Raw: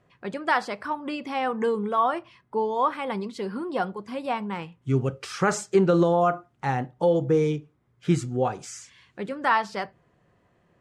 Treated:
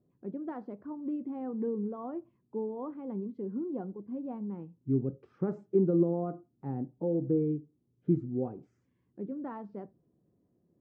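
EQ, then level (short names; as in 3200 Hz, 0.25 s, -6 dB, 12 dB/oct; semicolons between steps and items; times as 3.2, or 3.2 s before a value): band-pass 290 Hz, Q 1.9; tilt -3.5 dB/oct; -7.5 dB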